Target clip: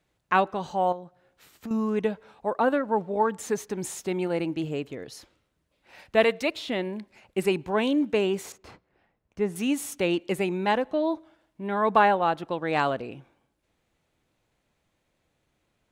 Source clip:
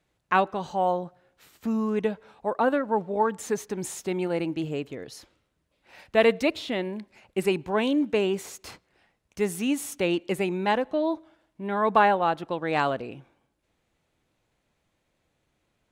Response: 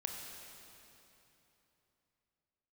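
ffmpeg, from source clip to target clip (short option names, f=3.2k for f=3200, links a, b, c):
-filter_complex "[0:a]asettb=1/sr,asplit=3[a][b][c];[a]atrim=end=0.924[d];[b]atrim=start=0.92:end=1.71,asetpts=PTS-STARTPTS,afade=t=in:d=0.004:c=qsin,afade=t=out:st=0.786:d=0.004:c=qsin,acompressor=threshold=-39dB:ratio=2.5[e];[c]atrim=start=1.706[f];[d][e]acrossfade=d=0.004:c1=hsin:c2=qsin[g];[g][f]acrossfade=d=0.004:c1=qsin:c2=hsin,asettb=1/sr,asplit=3[h][i][j];[h]atrim=end=6.244[k];[i]atrim=start=6.24:end=6.68,asetpts=PTS-STARTPTS,afade=t=in:d=0.004:c=qsin,afade=t=out:st=0.436:d=0.004:c=qsin,lowshelf=f=370:g=-8.5[l];[j]atrim=start=6.676[m];[k][l]acrossfade=d=0.004:c1=hsin:c2=qsin[n];[n][m]acrossfade=d=0.004:c1=qsin:c2=hsin,asettb=1/sr,asplit=3[o][p][q];[o]atrim=end=8.524[r];[p]atrim=start=8.52:end=9.56,asetpts=PTS-STARTPTS,afade=t=in:d=0.004:c=qsin,afade=t=out:st=1.036:d=0.004:c=qsin,lowpass=f=1.2k:p=1[s];[q]atrim=start=9.556[t];[r][s]acrossfade=d=0.004:c1=hsin:c2=qsin[u];[u][t]acrossfade=d=0.004:c1=qsin:c2=hsin"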